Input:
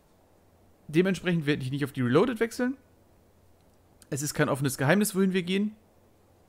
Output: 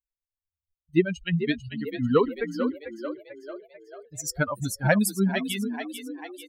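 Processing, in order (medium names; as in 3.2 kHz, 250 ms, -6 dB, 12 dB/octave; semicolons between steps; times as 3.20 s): expander on every frequency bin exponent 3; frequency-shifting echo 443 ms, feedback 53%, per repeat +51 Hz, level -9.5 dB; trim +6 dB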